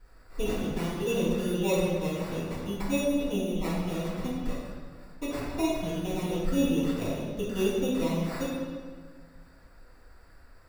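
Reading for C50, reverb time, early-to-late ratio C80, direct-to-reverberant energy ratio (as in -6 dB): -1.0 dB, 1.6 s, 1.0 dB, -14.0 dB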